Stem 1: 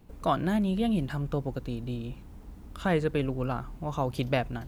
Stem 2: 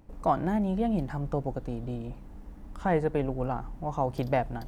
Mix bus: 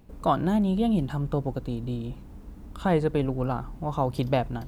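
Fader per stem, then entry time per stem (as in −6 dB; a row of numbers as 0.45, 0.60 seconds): −1.0, −3.5 decibels; 0.00, 0.00 seconds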